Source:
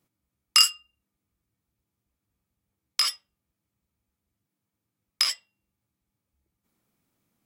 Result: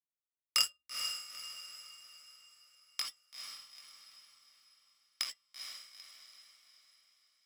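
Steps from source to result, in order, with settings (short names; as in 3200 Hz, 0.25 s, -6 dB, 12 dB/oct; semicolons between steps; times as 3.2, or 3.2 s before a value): power-law curve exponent 1.4; diffused feedback echo 0.454 s, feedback 45%, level -6 dB; gain -8 dB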